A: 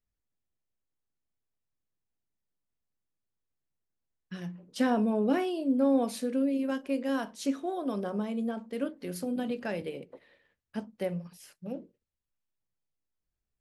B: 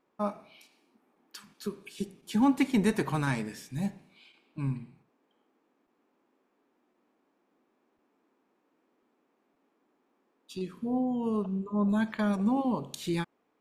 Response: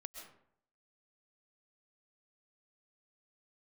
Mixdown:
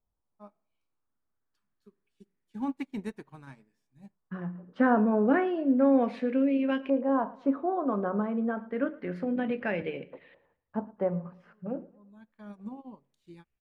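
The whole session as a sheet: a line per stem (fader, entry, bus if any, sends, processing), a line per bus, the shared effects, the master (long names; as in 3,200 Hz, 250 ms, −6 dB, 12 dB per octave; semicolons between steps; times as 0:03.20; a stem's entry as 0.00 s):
+2.5 dB, 0.00 s, no send, echo send −20.5 dB, auto-filter low-pass saw up 0.29 Hz 890–2,800 Hz
−7.0 dB, 0.20 s, no send, no echo send, expander for the loud parts 2.5 to 1, over −37 dBFS; automatic ducking −21 dB, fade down 0.20 s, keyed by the first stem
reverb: not used
echo: repeating echo 112 ms, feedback 35%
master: high-shelf EQ 3,500 Hz −7.5 dB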